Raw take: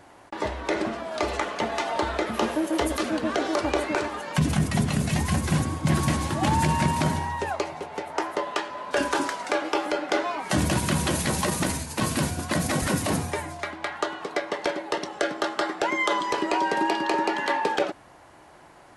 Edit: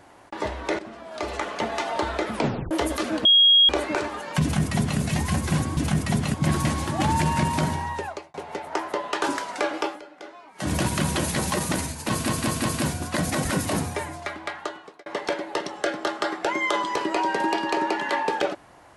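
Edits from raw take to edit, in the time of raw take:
0:00.79–0:01.56: fade in, from −14 dB
0:02.33: tape stop 0.38 s
0:03.25–0:03.69: beep over 3,280 Hz −12 dBFS
0:04.42–0:04.99: duplicate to 0:05.77
0:07.35–0:07.77: fade out
0:08.65–0:09.13: remove
0:09.71–0:10.67: duck −17 dB, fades 0.21 s
0:12.02: stutter 0.18 s, 4 plays
0:13.78–0:14.43: fade out

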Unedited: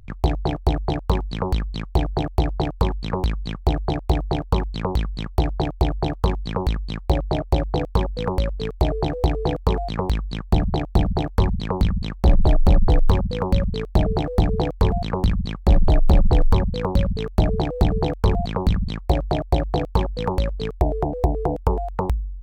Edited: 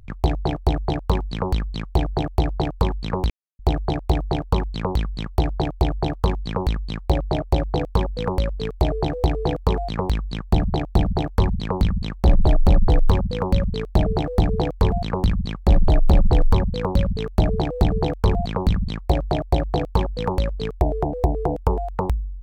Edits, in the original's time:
0:03.30–0:03.59: silence

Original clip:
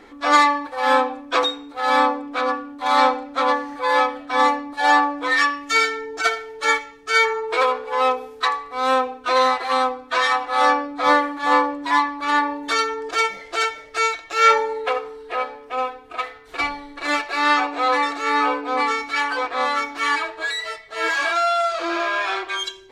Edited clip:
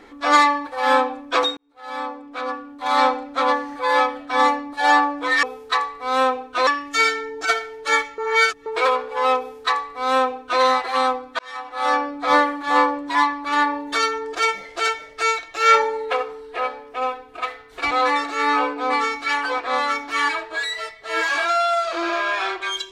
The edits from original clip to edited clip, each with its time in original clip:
0:01.57–0:03.22: fade in linear
0:06.94–0:07.42: reverse
0:08.14–0:09.38: duplicate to 0:05.43
0:10.15–0:10.89: fade in
0:16.67–0:17.78: remove

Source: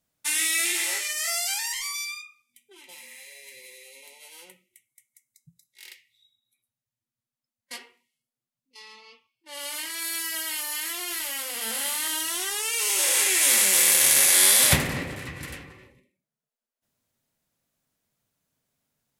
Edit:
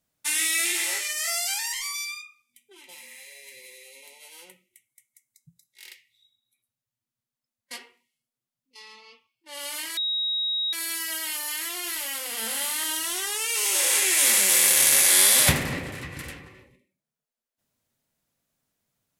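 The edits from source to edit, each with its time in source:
0:09.97: insert tone 3,800 Hz −23.5 dBFS 0.76 s

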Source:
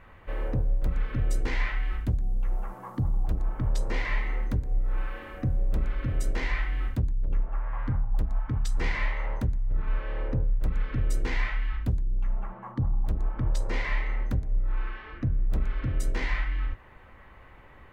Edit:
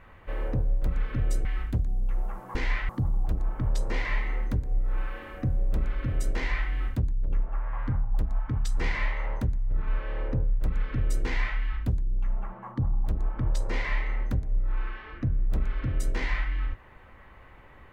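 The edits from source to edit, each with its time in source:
0:01.45–0:01.79: move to 0:02.89

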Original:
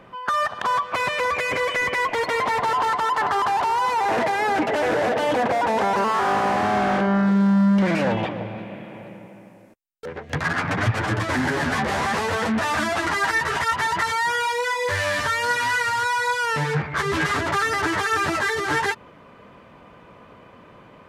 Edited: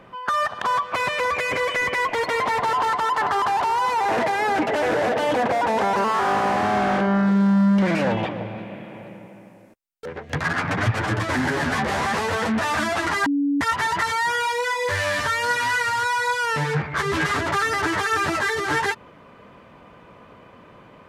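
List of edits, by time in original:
0:13.26–0:13.61: beep over 284 Hz −18 dBFS

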